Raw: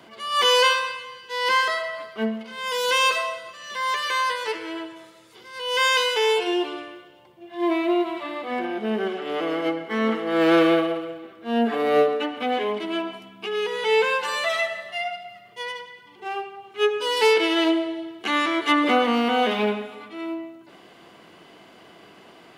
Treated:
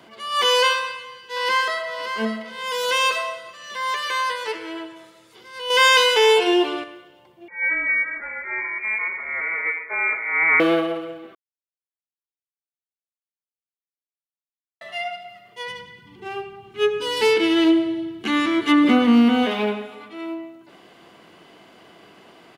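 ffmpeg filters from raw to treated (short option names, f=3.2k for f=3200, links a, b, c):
-filter_complex "[0:a]asplit=2[a][b];[b]afade=t=in:st=0.79:d=0.01,afade=t=out:st=1.92:d=0.01,aecho=0:1:570|1140|1710|2280:0.375837|0.112751|0.0338254|0.0101476[c];[a][c]amix=inputs=2:normalize=0,asettb=1/sr,asplit=3[d][e][f];[d]atrim=end=5.704[g];[e]atrim=start=5.7:end=6.84,asetpts=PTS-STARTPTS,afade=t=in:d=0.004:c=qsin,afade=t=out:st=1.136:d=0.004:c=qsin,acontrast=50[h];[f]atrim=start=6.836[i];[g][h]acrossfade=d=0.004:c1=hsin:c2=qsin[j];[j][i]acrossfade=d=0.004:c1=qsin:c2=hsin,asettb=1/sr,asplit=3[k][l][m];[k]atrim=end=7.484[n];[l]atrim=start=7.48:end=10.6,asetpts=PTS-STARTPTS,afade=t=in:d=0.004:c=qsin,afade=t=out:st=3.116:d=0.004:c=qsin,lowpass=f=2.2k:t=q:w=0.5098,lowpass=f=2.2k:t=q:w=0.6013,lowpass=f=2.2k:t=q:w=0.9,lowpass=f=2.2k:t=q:w=2.563,afreqshift=-2600[o];[m]atrim=start=10.596[p];[n][o]acrossfade=d=0.004:c1=hsin:c2=qsin[q];[q][p]acrossfade=d=0.004:c1=qsin:c2=hsin,asplit=3[r][s][t];[r]afade=t=out:st=15.67:d=0.02[u];[s]asubboost=boost=8:cutoff=210,afade=t=in:st=15.67:d=0.02,afade=t=out:st=19.45:d=0.02[v];[t]afade=t=in:st=19.45:d=0.02[w];[u][v][w]amix=inputs=3:normalize=0,asplit=3[x][y][z];[x]atrim=end=11.35,asetpts=PTS-STARTPTS,afade=t=out:st=11.346:d=0.004:c=hsin[aa];[y]atrim=start=11.35:end=14.81,asetpts=PTS-STARTPTS,volume=0[ab];[z]atrim=start=14.81,asetpts=PTS-STARTPTS,afade=t=in:d=0.004:c=hsin[ac];[aa][ab][ac]concat=n=3:v=0:a=1"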